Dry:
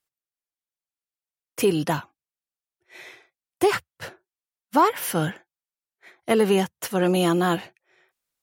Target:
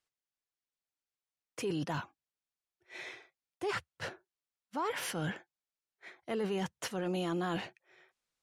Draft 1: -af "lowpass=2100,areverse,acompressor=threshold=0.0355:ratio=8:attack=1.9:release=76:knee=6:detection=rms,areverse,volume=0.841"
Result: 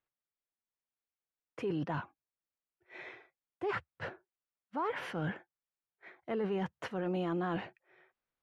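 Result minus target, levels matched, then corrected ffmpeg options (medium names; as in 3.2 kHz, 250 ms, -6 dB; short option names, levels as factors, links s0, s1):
8 kHz band -18.5 dB
-af "lowpass=7400,areverse,acompressor=threshold=0.0355:ratio=8:attack=1.9:release=76:knee=6:detection=rms,areverse,volume=0.841"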